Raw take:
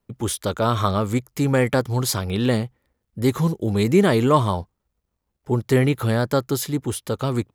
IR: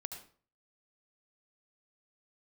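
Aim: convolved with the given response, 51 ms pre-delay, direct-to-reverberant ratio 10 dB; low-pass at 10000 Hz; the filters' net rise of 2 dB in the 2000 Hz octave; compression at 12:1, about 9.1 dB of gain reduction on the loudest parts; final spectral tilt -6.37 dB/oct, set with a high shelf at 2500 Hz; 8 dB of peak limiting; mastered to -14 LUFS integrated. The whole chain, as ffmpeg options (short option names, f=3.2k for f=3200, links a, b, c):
-filter_complex "[0:a]lowpass=10k,equalizer=f=2k:t=o:g=5.5,highshelf=f=2.5k:g=-7,acompressor=threshold=-21dB:ratio=12,alimiter=limit=-19dB:level=0:latency=1,asplit=2[a][b];[1:a]atrim=start_sample=2205,adelay=51[c];[b][c]afir=irnorm=-1:irlink=0,volume=-8dB[d];[a][d]amix=inputs=2:normalize=0,volume=14.5dB"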